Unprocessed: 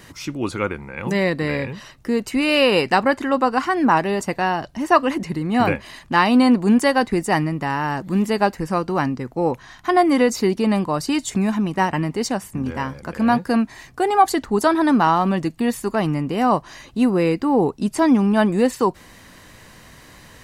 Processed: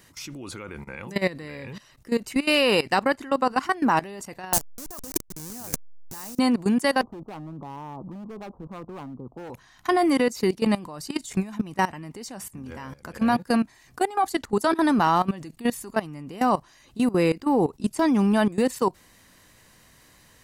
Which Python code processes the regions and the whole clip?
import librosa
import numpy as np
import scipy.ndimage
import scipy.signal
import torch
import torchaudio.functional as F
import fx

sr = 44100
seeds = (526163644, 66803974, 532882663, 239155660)

y = fx.chain(x, sr, fx.delta_hold(step_db=-19.5),
    fx.curve_eq(hz=(150.0, 3200.0, 6100.0), db=(0, -7, 10)),
    fx.over_compress(threshold_db=-23.0, ratio=-0.5), at=(4.53, 6.39))
y = fx.chain(y, sr, fx.steep_lowpass(hz=1200.0, slope=72),
    fx.clip_hard(threshold_db=-19.5),
    fx.band_squash(depth_pct=40), at=(7.01, 9.5))
y = fx.high_shelf(y, sr, hz=5100.0, db=8.0)
y = fx.level_steps(y, sr, step_db=18)
y = y * librosa.db_to_amplitude(-1.5)